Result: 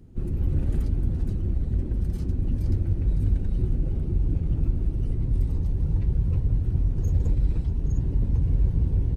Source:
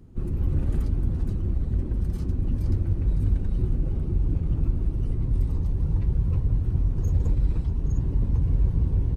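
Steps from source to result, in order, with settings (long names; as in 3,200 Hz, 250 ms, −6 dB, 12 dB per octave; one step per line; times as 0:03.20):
parametric band 1,100 Hz −5.5 dB 0.61 octaves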